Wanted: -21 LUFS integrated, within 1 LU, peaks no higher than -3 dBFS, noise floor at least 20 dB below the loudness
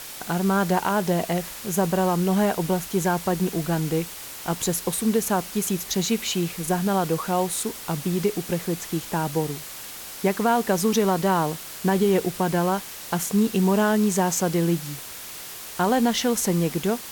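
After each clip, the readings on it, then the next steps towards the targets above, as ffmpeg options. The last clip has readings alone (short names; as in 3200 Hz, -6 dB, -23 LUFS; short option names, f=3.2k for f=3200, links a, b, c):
noise floor -38 dBFS; noise floor target -44 dBFS; loudness -24.0 LUFS; peak -8.5 dBFS; loudness target -21.0 LUFS
-> -af "afftdn=nr=6:nf=-38"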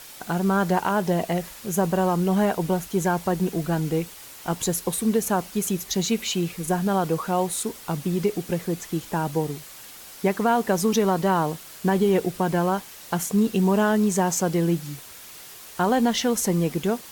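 noise floor -43 dBFS; noise floor target -44 dBFS
-> -af "afftdn=nr=6:nf=-43"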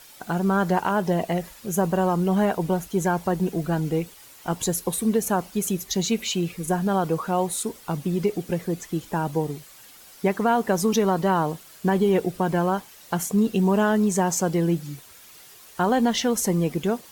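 noise floor -48 dBFS; loudness -24.0 LUFS; peak -8.5 dBFS; loudness target -21.0 LUFS
-> -af "volume=3dB"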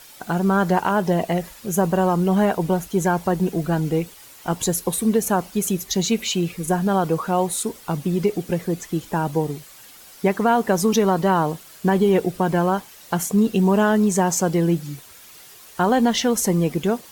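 loudness -21.0 LUFS; peak -5.5 dBFS; noise floor -45 dBFS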